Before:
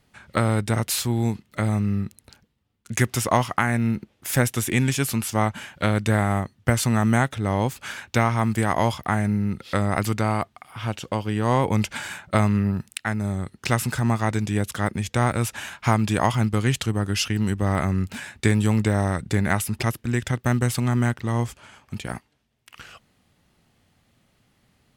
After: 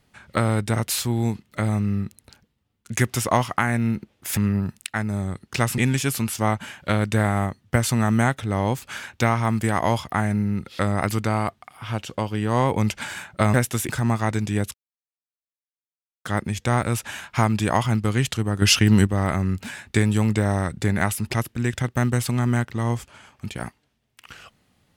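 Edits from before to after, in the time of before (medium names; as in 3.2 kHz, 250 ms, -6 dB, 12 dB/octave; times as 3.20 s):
4.37–4.72 s: swap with 12.48–13.89 s
14.74 s: insert silence 1.51 s
17.11–17.56 s: gain +7.5 dB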